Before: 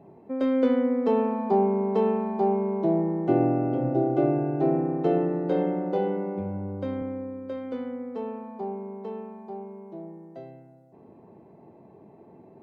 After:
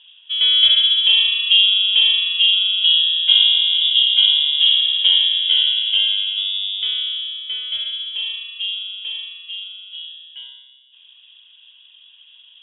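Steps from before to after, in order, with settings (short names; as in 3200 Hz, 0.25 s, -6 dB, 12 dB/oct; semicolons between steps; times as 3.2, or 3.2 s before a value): inverted band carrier 3600 Hz; low-pass opened by the level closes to 2400 Hz, open at -21 dBFS; high shelf 2700 Hz +7.5 dB; gain +4 dB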